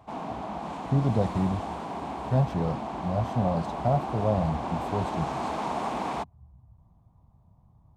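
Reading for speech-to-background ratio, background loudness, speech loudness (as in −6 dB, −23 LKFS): 5.0 dB, −34.0 LKFS, −29.0 LKFS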